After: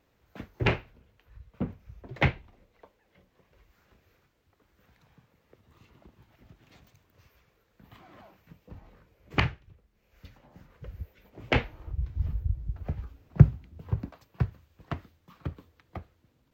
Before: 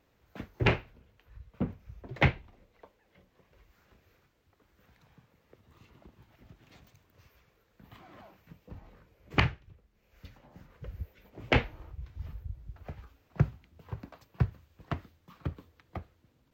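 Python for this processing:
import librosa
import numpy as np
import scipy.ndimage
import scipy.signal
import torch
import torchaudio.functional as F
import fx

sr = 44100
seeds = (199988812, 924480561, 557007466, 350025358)

y = fx.low_shelf(x, sr, hz=410.0, db=11.5, at=(11.86, 14.11))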